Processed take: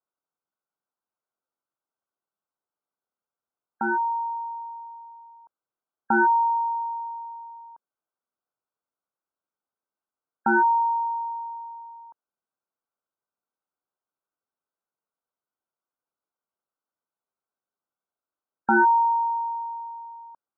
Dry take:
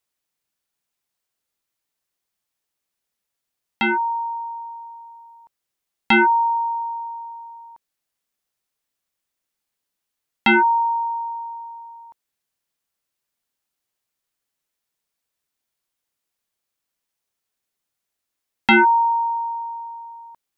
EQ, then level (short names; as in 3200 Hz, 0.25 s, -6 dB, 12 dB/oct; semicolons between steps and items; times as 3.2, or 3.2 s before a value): HPF 430 Hz 6 dB/oct; brick-wall FIR low-pass 1600 Hz; air absorption 430 m; 0.0 dB